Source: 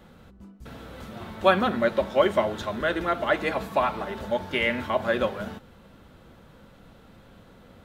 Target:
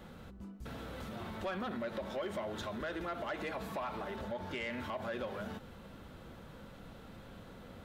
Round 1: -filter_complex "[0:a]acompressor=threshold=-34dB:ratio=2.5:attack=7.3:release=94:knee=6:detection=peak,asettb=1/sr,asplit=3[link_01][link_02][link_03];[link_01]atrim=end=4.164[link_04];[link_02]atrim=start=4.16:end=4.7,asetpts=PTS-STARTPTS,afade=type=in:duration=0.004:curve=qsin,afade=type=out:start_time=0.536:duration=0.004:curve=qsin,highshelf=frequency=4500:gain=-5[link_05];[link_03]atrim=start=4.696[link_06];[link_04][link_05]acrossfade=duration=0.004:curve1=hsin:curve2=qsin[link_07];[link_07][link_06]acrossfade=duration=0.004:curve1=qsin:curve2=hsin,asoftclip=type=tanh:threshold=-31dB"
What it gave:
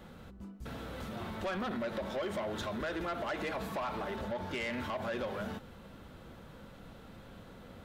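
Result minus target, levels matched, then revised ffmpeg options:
downward compressor: peak gain reduction −4.5 dB
-filter_complex "[0:a]acompressor=threshold=-41.5dB:ratio=2.5:attack=7.3:release=94:knee=6:detection=peak,asettb=1/sr,asplit=3[link_01][link_02][link_03];[link_01]atrim=end=4.164[link_04];[link_02]atrim=start=4.16:end=4.7,asetpts=PTS-STARTPTS,afade=type=in:duration=0.004:curve=qsin,afade=type=out:start_time=0.536:duration=0.004:curve=qsin,highshelf=frequency=4500:gain=-5[link_05];[link_03]atrim=start=4.696[link_06];[link_04][link_05]acrossfade=duration=0.004:curve1=hsin:curve2=qsin[link_07];[link_07][link_06]acrossfade=duration=0.004:curve1=qsin:curve2=hsin,asoftclip=type=tanh:threshold=-31dB"

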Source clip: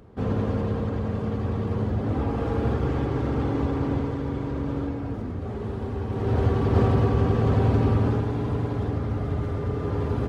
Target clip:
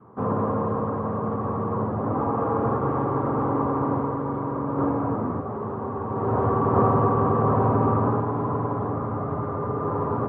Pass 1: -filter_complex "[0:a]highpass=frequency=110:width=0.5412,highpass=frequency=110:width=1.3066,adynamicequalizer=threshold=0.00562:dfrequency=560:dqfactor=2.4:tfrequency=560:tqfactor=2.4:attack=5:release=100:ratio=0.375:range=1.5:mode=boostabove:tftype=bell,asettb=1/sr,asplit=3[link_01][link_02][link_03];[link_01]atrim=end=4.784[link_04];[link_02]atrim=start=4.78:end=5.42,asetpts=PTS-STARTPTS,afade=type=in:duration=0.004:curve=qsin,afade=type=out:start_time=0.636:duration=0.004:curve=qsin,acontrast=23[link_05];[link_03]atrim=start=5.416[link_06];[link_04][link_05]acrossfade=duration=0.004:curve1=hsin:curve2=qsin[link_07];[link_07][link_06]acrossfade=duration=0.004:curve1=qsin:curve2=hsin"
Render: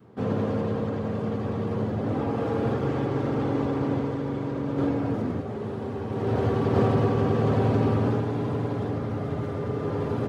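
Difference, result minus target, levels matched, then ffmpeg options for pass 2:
1,000 Hz band −7.0 dB
-filter_complex "[0:a]highpass=frequency=110:width=0.5412,highpass=frequency=110:width=1.3066,adynamicequalizer=threshold=0.00562:dfrequency=560:dqfactor=2.4:tfrequency=560:tqfactor=2.4:attack=5:release=100:ratio=0.375:range=1.5:mode=boostabove:tftype=bell,lowpass=frequency=1100:width_type=q:width=4.7,asettb=1/sr,asplit=3[link_01][link_02][link_03];[link_01]atrim=end=4.784[link_04];[link_02]atrim=start=4.78:end=5.42,asetpts=PTS-STARTPTS,afade=type=in:duration=0.004:curve=qsin,afade=type=out:start_time=0.636:duration=0.004:curve=qsin,acontrast=23[link_05];[link_03]atrim=start=5.416[link_06];[link_04][link_05]acrossfade=duration=0.004:curve1=hsin:curve2=qsin[link_07];[link_07][link_06]acrossfade=duration=0.004:curve1=qsin:curve2=hsin"

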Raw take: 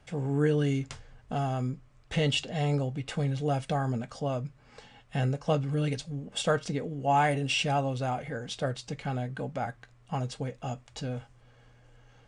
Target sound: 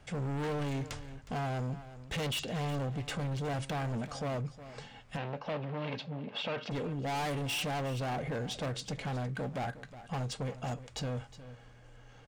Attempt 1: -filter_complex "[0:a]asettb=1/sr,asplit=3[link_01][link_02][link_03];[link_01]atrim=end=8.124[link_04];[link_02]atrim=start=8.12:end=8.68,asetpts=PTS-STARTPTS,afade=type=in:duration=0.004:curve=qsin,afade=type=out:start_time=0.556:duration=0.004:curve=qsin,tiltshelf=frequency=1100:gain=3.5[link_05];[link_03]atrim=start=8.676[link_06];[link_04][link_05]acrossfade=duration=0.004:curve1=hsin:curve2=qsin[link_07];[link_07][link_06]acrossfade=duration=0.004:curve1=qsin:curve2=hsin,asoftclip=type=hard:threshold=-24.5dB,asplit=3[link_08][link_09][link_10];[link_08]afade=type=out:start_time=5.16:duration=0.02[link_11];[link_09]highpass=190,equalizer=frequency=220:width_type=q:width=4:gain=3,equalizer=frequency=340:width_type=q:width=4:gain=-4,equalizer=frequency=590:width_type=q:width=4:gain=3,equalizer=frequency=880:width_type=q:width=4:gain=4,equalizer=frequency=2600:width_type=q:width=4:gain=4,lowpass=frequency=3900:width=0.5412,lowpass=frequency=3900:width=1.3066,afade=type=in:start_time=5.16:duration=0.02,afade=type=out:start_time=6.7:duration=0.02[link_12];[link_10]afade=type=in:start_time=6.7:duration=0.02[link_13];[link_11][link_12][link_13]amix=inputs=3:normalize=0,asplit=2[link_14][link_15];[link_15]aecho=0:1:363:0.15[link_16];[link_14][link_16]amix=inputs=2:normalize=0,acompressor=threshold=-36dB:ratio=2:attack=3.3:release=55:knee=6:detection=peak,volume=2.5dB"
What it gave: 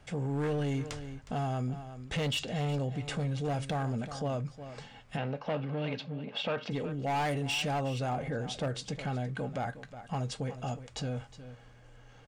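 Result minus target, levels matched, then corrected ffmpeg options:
hard clipping: distortion −7 dB
-filter_complex "[0:a]asettb=1/sr,asplit=3[link_01][link_02][link_03];[link_01]atrim=end=8.124[link_04];[link_02]atrim=start=8.12:end=8.68,asetpts=PTS-STARTPTS,afade=type=in:duration=0.004:curve=qsin,afade=type=out:start_time=0.556:duration=0.004:curve=qsin,tiltshelf=frequency=1100:gain=3.5[link_05];[link_03]atrim=start=8.676[link_06];[link_04][link_05]acrossfade=duration=0.004:curve1=hsin:curve2=qsin[link_07];[link_07][link_06]acrossfade=duration=0.004:curve1=qsin:curve2=hsin,asoftclip=type=hard:threshold=-33dB,asplit=3[link_08][link_09][link_10];[link_08]afade=type=out:start_time=5.16:duration=0.02[link_11];[link_09]highpass=190,equalizer=frequency=220:width_type=q:width=4:gain=3,equalizer=frequency=340:width_type=q:width=4:gain=-4,equalizer=frequency=590:width_type=q:width=4:gain=3,equalizer=frequency=880:width_type=q:width=4:gain=4,equalizer=frequency=2600:width_type=q:width=4:gain=4,lowpass=frequency=3900:width=0.5412,lowpass=frequency=3900:width=1.3066,afade=type=in:start_time=5.16:duration=0.02,afade=type=out:start_time=6.7:duration=0.02[link_12];[link_10]afade=type=in:start_time=6.7:duration=0.02[link_13];[link_11][link_12][link_13]amix=inputs=3:normalize=0,asplit=2[link_14][link_15];[link_15]aecho=0:1:363:0.15[link_16];[link_14][link_16]amix=inputs=2:normalize=0,acompressor=threshold=-36dB:ratio=2:attack=3.3:release=55:knee=6:detection=peak,volume=2.5dB"

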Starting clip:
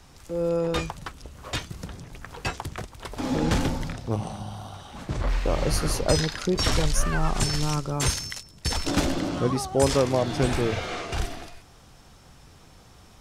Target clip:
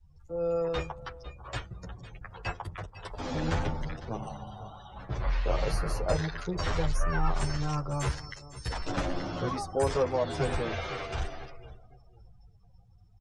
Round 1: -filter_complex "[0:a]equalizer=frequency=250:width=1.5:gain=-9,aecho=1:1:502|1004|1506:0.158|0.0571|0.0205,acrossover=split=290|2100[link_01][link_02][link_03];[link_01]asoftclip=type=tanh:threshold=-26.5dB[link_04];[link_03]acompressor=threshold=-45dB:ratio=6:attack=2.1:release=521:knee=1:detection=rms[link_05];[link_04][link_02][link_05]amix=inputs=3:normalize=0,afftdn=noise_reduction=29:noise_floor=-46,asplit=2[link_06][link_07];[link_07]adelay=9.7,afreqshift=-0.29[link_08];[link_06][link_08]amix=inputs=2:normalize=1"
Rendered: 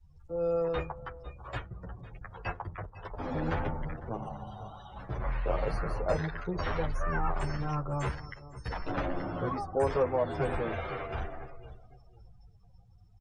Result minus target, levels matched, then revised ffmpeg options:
downward compressor: peak gain reduction +9 dB; soft clipping: distortion +11 dB
-filter_complex "[0:a]equalizer=frequency=250:width=1.5:gain=-9,aecho=1:1:502|1004|1506:0.158|0.0571|0.0205,acrossover=split=290|2100[link_01][link_02][link_03];[link_01]asoftclip=type=tanh:threshold=-17dB[link_04];[link_03]acompressor=threshold=-34dB:ratio=6:attack=2.1:release=521:knee=1:detection=rms[link_05];[link_04][link_02][link_05]amix=inputs=3:normalize=0,afftdn=noise_reduction=29:noise_floor=-46,asplit=2[link_06][link_07];[link_07]adelay=9.7,afreqshift=-0.29[link_08];[link_06][link_08]amix=inputs=2:normalize=1"

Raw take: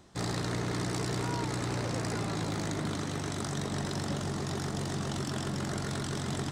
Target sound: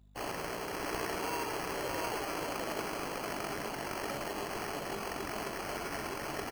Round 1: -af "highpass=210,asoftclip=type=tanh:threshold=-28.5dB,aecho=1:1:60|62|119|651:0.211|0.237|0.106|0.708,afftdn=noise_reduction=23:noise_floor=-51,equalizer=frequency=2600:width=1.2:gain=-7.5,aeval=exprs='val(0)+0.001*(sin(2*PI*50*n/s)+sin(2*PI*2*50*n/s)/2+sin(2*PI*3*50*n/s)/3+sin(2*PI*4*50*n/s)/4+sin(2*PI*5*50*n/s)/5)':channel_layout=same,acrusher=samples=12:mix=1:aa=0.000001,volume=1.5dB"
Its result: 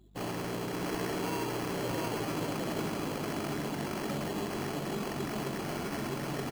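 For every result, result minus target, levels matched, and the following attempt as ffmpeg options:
soft clipping: distortion +14 dB; 250 Hz band +5.5 dB
-af "highpass=210,asoftclip=type=tanh:threshold=-21dB,aecho=1:1:60|62|119|651:0.211|0.237|0.106|0.708,afftdn=noise_reduction=23:noise_floor=-51,equalizer=frequency=2600:width=1.2:gain=-7.5,aeval=exprs='val(0)+0.001*(sin(2*PI*50*n/s)+sin(2*PI*2*50*n/s)/2+sin(2*PI*3*50*n/s)/3+sin(2*PI*4*50*n/s)/4+sin(2*PI*5*50*n/s)/5)':channel_layout=same,acrusher=samples=12:mix=1:aa=0.000001,volume=1.5dB"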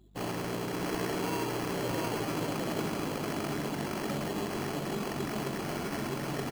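250 Hz band +5.5 dB
-af "highpass=510,asoftclip=type=tanh:threshold=-21dB,aecho=1:1:60|62|119|651:0.211|0.237|0.106|0.708,afftdn=noise_reduction=23:noise_floor=-51,equalizer=frequency=2600:width=1.2:gain=-7.5,aeval=exprs='val(0)+0.001*(sin(2*PI*50*n/s)+sin(2*PI*2*50*n/s)/2+sin(2*PI*3*50*n/s)/3+sin(2*PI*4*50*n/s)/4+sin(2*PI*5*50*n/s)/5)':channel_layout=same,acrusher=samples=12:mix=1:aa=0.000001,volume=1.5dB"

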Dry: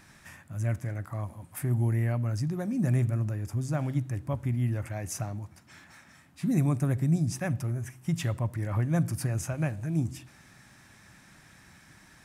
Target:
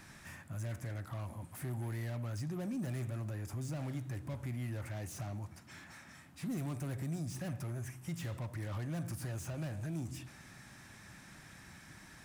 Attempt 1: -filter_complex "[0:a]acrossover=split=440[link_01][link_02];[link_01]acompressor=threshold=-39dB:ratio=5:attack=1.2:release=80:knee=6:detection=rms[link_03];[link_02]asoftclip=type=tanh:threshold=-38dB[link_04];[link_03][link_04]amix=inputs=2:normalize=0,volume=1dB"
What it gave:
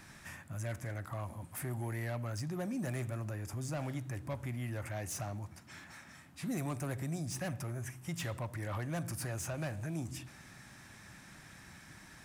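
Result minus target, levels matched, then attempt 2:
soft clipping: distortion −6 dB
-filter_complex "[0:a]acrossover=split=440[link_01][link_02];[link_01]acompressor=threshold=-39dB:ratio=5:attack=1.2:release=80:knee=6:detection=rms[link_03];[link_02]asoftclip=type=tanh:threshold=-48dB[link_04];[link_03][link_04]amix=inputs=2:normalize=0,volume=1dB"

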